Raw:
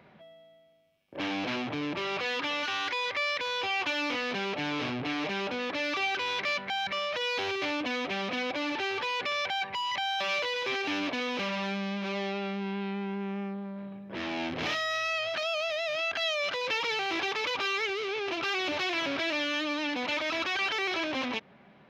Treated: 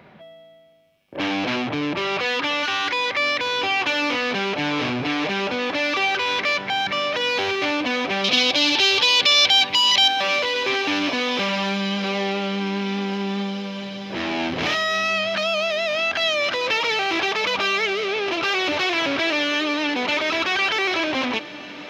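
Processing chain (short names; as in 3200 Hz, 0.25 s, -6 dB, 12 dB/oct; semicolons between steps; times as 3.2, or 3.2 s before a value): 8.24–10.08 resonant high shelf 2500 Hz +11.5 dB, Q 1.5; on a send: diffused feedback echo 1.933 s, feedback 49%, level -15 dB; on the sum: gain +8.5 dB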